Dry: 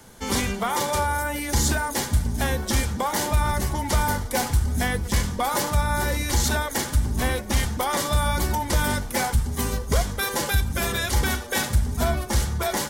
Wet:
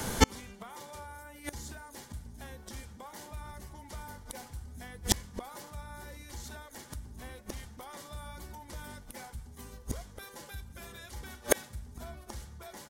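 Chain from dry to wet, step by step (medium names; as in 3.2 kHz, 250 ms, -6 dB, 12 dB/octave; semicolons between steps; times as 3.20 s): delay 210 ms -24 dB; inverted gate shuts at -20 dBFS, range -35 dB; trim +13 dB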